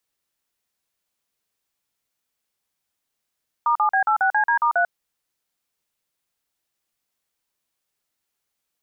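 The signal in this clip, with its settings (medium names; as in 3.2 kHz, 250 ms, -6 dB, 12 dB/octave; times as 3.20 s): DTMF "*7B86CD*3", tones 94 ms, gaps 43 ms, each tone -18.5 dBFS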